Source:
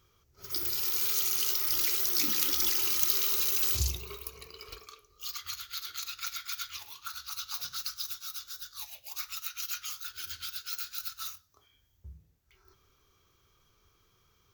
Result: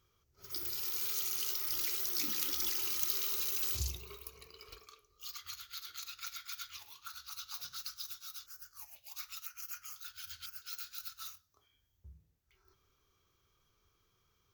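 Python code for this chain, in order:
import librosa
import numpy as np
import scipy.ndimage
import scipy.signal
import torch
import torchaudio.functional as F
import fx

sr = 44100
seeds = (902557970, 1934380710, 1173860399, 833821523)

y = fx.filter_lfo_notch(x, sr, shape='square', hz=1.0, low_hz=370.0, high_hz=3700.0, q=0.89, at=(8.46, 10.62))
y = F.gain(torch.from_numpy(y), -7.0).numpy()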